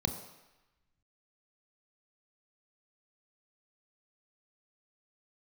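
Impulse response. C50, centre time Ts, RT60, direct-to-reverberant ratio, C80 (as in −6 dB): 9.0 dB, 18 ms, 1.0 s, 6.0 dB, 10.5 dB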